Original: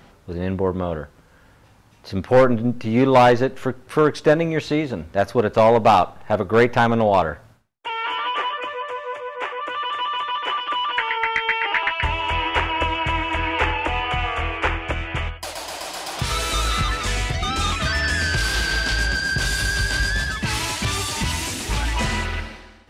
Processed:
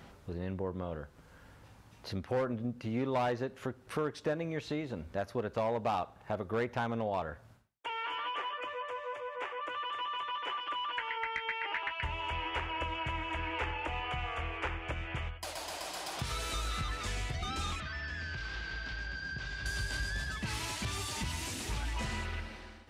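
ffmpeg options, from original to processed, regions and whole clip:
-filter_complex "[0:a]asettb=1/sr,asplit=3[a][b][c];[a]atrim=end=17.804[d];[b]atrim=start=17.8:end=19.66,asetpts=PTS-STARTPTS,afade=t=in:d=0.004:c=qsin,afade=t=out:st=1.856:d=0.004:c=qsin,lowpass=f=5.5k:w=0.5412,lowpass=f=5.5k:w=1.3066,acrossover=split=220|1200|2400[e][f][g][h];[e]acompressor=threshold=-35dB:ratio=3[i];[f]acompressor=threshold=-45dB:ratio=3[j];[g]acompressor=threshold=-33dB:ratio=3[k];[h]acompressor=threshold=-44dB:ratio=3[l];[i][j][k][l]amix=inputs=4:normalize=0[m];[c]atrim=start=19.656[n];[d][m]acrossfade=d=0.004:c1=hsin:c2=qsin[o];[o][n]acrossfade=d=0.004:c1=qsin:c2=hsin,highpass=44,lowshelf=f=75:g=5.5,acompressor=threshold=-36dB:ratio=2,volume=-5dB"

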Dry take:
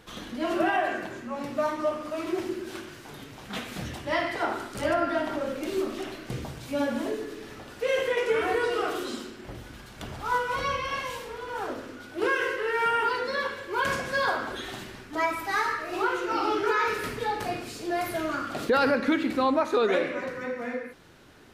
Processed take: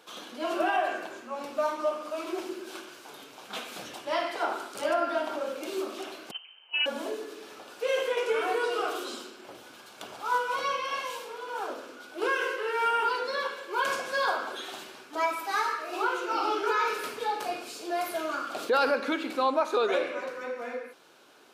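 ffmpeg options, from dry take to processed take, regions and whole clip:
-filter_complex "[0:a]asettb=1/sr,asplit=3[a][b][c];[a]atrim=end=6.314[d];[b]atrim=start=6.31:end=6.86,asetpts=PTS-STARTPTS,afade=t=in:d=0.004:c=qsin,afade=t=out:st=0.546:d=0.004:c=qsin,agate=range=-14dB:threshold=-32dB:ratio=16:release=100:detection=peak,lowpass=f=2.7k:t=q:w=0.5098,lowpass=f=2.7k:t=q:w=0.6013,lowpass=f=2.7k:t=q:w=0.9,lowpass=f=2.7k:t=q:w=2.563,afreqshift=-3200[e];[c]atrim=start=6.856[f];[d][e]acrossfade=d=0.004:c1=hsin:c2=qsin[g];[g][f]acrossfade=d=0.004:c1=qsin:c2=hsin,highpass=430,equalizer=f=1.9k:t=o:w=0.24:g=-10.5"

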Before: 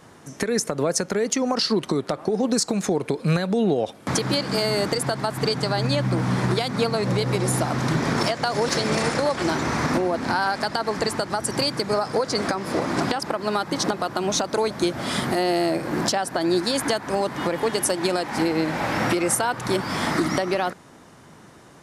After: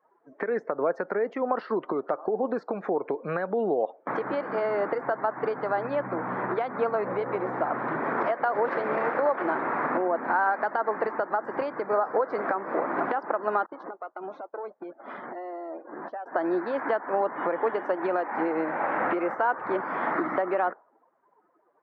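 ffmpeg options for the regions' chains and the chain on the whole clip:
-filter_complex "[0:a]asettb=1/sr,asplit=3[a][b][c];[a]atrim=end=13.664[d];[b]atrim=start=13.66:end=16.26,asetpts=PTS-STARTPTS,afade=t=in:d=0.004:c=qsin,afade=t=out:st=2.596:d=0.004:c=qsin,agate=range=-33dB:threshold=-23dB:ratio=3:release=100:detection=peak,acompressor=threshold=-25dB:ratio=12:attack=3.2:release=140:knee=1:detection=peak,aeval=exprs='(tanh(12.6*val(0)+0.55)-tanh(0.55))/12.6':c=same[e];[c]atrim=start=16.256[f];[d][e]acrossfade=d=0.004:c1=hsin:c2=qsin[g];[g][f]acrossfade=d=0.004:c1=qsin:c2=hsin,highpass=440,afftdn=nr=22:nf=-41,lowpass=f=1.7k:w=0.5412,lowpass=f=1.7k:w=1.3066"

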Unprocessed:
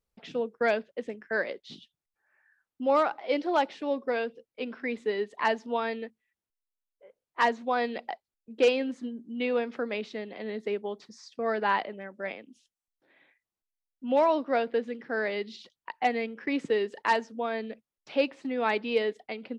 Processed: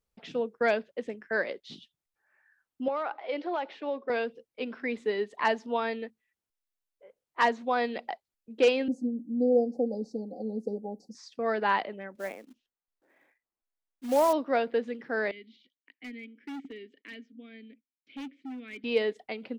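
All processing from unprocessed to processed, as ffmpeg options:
-filter_complex "[0:a]asettb=1/sr,asplit=3[a][b][c];[a]atrim=end=2.884[d];[b]atrim=start=2.88:end=4.1,asetpts=PTS-STARTPTS,afade=t=in:d=0.004:c=qsin,afade=t=out:st=1.216:d=0.004:c=qsin,highpass=350,lowpass=3.5k,acompressor=threshold=-27dB:ratio=6:attack=3.2:release=140:knee=1:detection=peak[e];[c]atrim=start=4.096[f];[d][e]acrossfade=d=0.004:c1=hsin:c2=qsin[g];[g][f]acrossfade=d=0.004:c1=qsin:c2=hsin,asettb=1/sr,asplit=3[h][i][j];[h]atrim=end=8.884[k];[i]atrim=start=8.88:end=11.15,asetpts=PTS-STARTPTS,afade=t=in:d=0.004:c=qsin,afade=t=out:st=2.266:d=0.004:c=qsin,asuperstop=centerf=1900:order=20:qfactor=0.53,equalizer=f=3.2k:w=0.8:g=-14.5,aecho=1:1:3.9:0.98,atrim=end_sample=100107[l];[j]atrim=start=11.146[m];[k][l]acrossfade=d=0.004:c1=hsin:c2=qsin[n];[n][m]acrossfade=d=0.004:c1=qsin:c2=hsin,asettb=1/sr,asplit=3[o][p][q];[o]atrim=end=12.154[r];[p]atrim=start=12.15:end=14.33,asetpts=PTS-STARTPTS,afade=t=in:d=0.004:c=qsin,afade=t=out:st=2.176:d=0.004:c=qsin,lowpass=1.7k,acrusher=bits=4:mode=log:mix=0:aa=0.000001,equalizer=f=120:t=o:w=0.78:g=-13[s];[q]atrim=start=14.326[t];[r][s]acrossfade=d=0.004:c1=hsin:c2=qsin[u];[u][t]acrossfade=d=0.004:c1=qsin:c2=hsin,asettb=1/sr,asplit=3[v][w][x];[v]atrim=end=15.314[y];[w]atrim=start=15.31:end=18.84,asetpts=PTS-STARTPTS,afade=t=in:d=0.004:c=qsin,afade=t=out:st=3.526:d=0.004:c=qsin,asplit=3[z][aa][ab];[z]bandpass=f=270:t=q:w=8,volume=0dB[ac];[aa]bandpass=f=2.29k:t=q:w=8,volume=-6dB[ad];[ab]bandpass=f=3.01k:t=q:w=8,volume=-9dB[ae];[ac][ad][ae]amix=inputs=3:normalize=0,asoftclip=type=hard:threshold=-36.5dB[af];[x]atrim=start=18.836[ag];[y][af]acrossfade=d=0.004:c1=hsin:c2=qsin[ah];[ah][ag]acrossfade=d=0.004:c1=qsin:c2=hsin"

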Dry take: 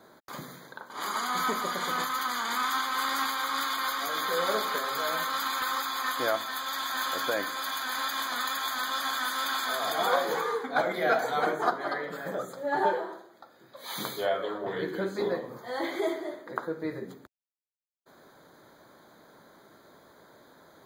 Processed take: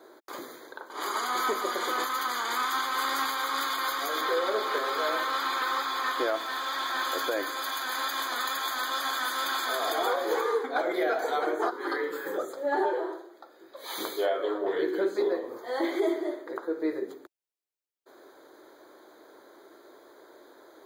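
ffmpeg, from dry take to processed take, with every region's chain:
-filter_complex "[0:a]asettb=1/sr,asplit=3[a][b][c];[a]atrim=end=4.214[d];[b]atrim=start=4.21:end=7.05,asetpts=PTS-STARTPTS,afade=t=in:d=0.004:c=qsin,afade=t=out:st=2.836:d=0.004:c=qsin,aeval=exprs='val(0)+0.5*0.0112*sgn(val(0))':c=same,acrossover=split=5000[e][f];[f]acompressor=threshold=-47dB:ratio=4:attack=1:release=60[g];[e][g]amix=inputs=2:normalize=0[h];[c]atrim=start=7.046[i];[d][h]acrossfade=d=0.004:c1=hsin:c2=qsin[j];[j][i]acrossfade=d=0.004:c1=qsin:c2=hsin,asettb=1/sr,asplit=3[k][l][m];[k]atrim=end=11.714[n];[l]atrim=start=11.71:end=12.38,asetpts=PTS-STARTPTS,afade=t=in:d=0.004:c=qsin,afade=t=out:st=0.666:d=0.004:c=qsin,asuperstop=centerf=650:order=4:qfactor=2.4,highshelf=f=10k:g=9,asplit=2[o][p];[p]adelay=27,volume=-8dB[q];[o][q]amix=inputs=2:normalize=0,atrim=end_sample=29547[r];[m]atrim=start=12.376[s];[n][r]acrossfade=d=0.004:c1=hsin:c2=qsin[t];[t][s]acrossfade=d=0.004:c1=qsin:c2=hsin,lowshelf=f=240:t=q:w=3:g=-12.5,alimiter=limit=-17.5dB:level=0:latency=1:release=199"

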